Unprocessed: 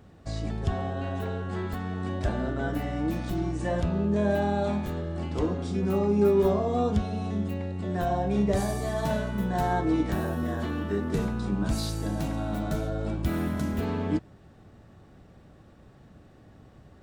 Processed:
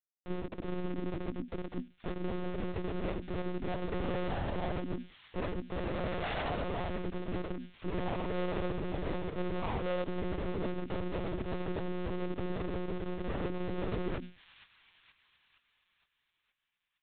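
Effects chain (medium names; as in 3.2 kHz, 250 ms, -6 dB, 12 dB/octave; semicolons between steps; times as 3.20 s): Schmitt trigger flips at -25 dBFS; on a send: feedback echo behind a high-pass 468 ms, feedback 54%, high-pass 2.2 kHz, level -13 dB; on the sum: formant-preserving pitch shift -3.5 st; flange 0.16 Hz, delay 7.8 ms, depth 4.9 ms, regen +25%; in parallel at +1.5 dB: compression, threshold -48 dBFS, peak gain reduction 18 dB; on the sum: frequency shift +240 Hz; monotone LPC vocoder at 8 kHz 180 Hz; trim -2 dB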